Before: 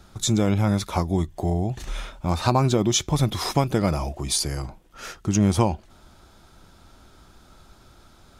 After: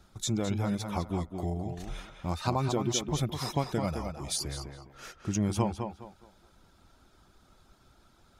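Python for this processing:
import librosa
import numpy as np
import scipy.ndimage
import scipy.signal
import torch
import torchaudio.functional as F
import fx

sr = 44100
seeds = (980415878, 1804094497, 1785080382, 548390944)

y = fx.dereverb_blind(x, sr, rt60_s=0.62)
y = fx.echo_tape(y, sr, ms=210, feedback_pct=30, wet_db=-5.0, lp_hz=3500.0, drive_db=2.0, wow_cents=30)
y = y * 10.0 ** (-8.5 / 20.0)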